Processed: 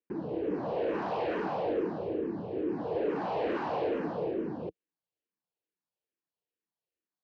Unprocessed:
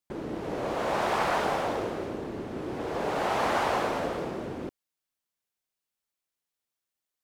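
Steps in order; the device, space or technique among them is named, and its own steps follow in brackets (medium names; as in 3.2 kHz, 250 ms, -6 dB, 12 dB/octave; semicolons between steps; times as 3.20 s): barber-pole phaser into a guitar amplifier (barber-pole phaser -2.3 Hz; saturation -28.5 dBFS, distortion -13 dB; cabinet simulation 87–3800 Hz, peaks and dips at 180 Hz +5 dB, 320 Hz +7 dB, 460 Hz +8 dB, 1.3 kHz -8 dB, 2.1 kHz -7 dB, 3.5 kHz -8 dB)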